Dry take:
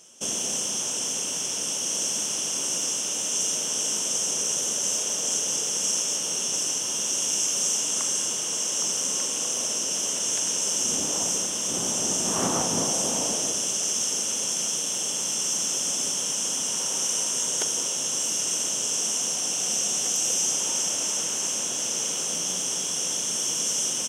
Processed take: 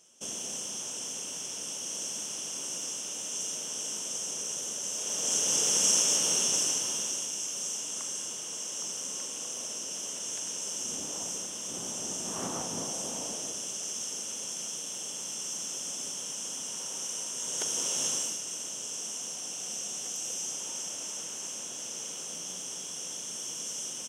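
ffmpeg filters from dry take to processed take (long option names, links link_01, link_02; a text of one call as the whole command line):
ffmpeg -i in.wav -af "volume=9dB,afade=type=in:start_time=4.94:duration=0.76:silence=0.316228,afade=type=out:start_time=6.3:duration=1.01:silence=0.281838,afade=type=in:start_time=17.37:duration=0.68:silence=0.398107,afade=type=out:start_time=18.05:duration=0.35:silence=0.354813" out.wav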